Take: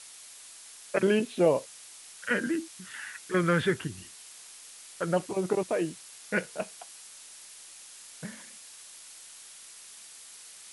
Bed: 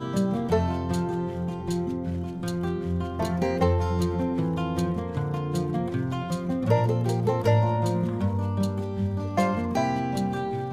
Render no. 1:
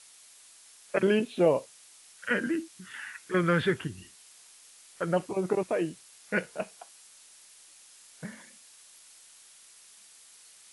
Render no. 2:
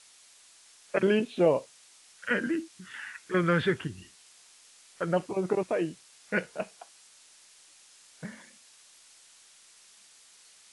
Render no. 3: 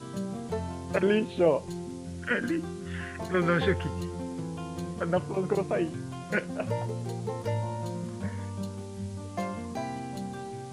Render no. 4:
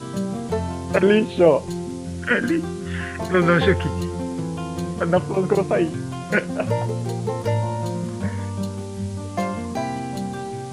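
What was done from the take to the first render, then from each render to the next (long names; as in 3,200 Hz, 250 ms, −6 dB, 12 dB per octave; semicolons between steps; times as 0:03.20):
noise reduction from a noise print 6 dB
low-pass filter 8,600 Hz 12 dB per octave
mix in bed −9.5 dB
level +8.5 dB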